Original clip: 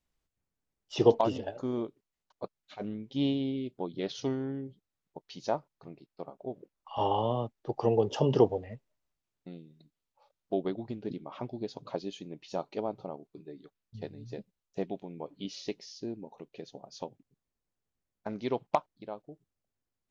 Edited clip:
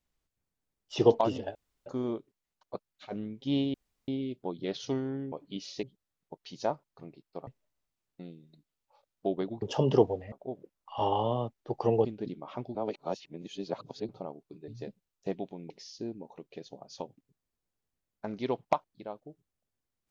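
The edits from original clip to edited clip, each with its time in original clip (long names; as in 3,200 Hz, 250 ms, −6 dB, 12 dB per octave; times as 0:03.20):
0:01.55: splice in room tone 0.31 s
0:03.43: splice in room tone 0.34 s
0:06.31–0:08.04: swap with 0:08.74–0:10.89
0:11.59–0:12.93: reverse
0:13.52–0:14.19: remove
0:15.21–0:15.72: move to 0:04.67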